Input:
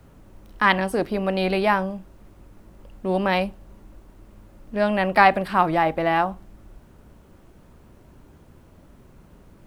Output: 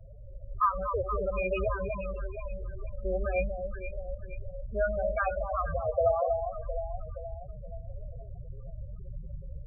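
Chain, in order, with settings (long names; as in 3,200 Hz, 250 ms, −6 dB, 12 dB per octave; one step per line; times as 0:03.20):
sub-octave generator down 2 octaves, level 0 dB
downward compressor 2.5 to 1, threshold −40 dBFS, peak gain reduction 19.5 dB
harmonic generator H 6 −38 dB, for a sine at −19 dBFS
parametric band 320 Hz −7.5 dB 0.24 octaves
bit-depth reduction 10 bits, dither none
auto-filter low-pass saw up 0.51 Hz 670–3,900 Hz
delay that swaps between a low-pass and a high-pass 237 ms, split 1,100 Hz, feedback 72%, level −4.5 dB
automatic gain control gain up to 6.5 dB
on a send at −13 dB: convolution reverb RT60 1.6 s, pre-delay 4 ms
on the sum: floating-point word with a short mantissa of 4 bits
phaser with its sweep stopped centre 1,300 Hz, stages 8
spectral peaks only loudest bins 8
level +2 dB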